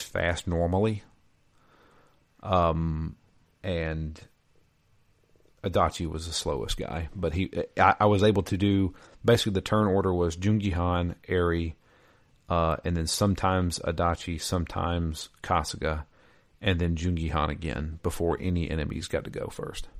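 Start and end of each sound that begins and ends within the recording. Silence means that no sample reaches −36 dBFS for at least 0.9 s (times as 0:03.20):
0:02.43–0:04.19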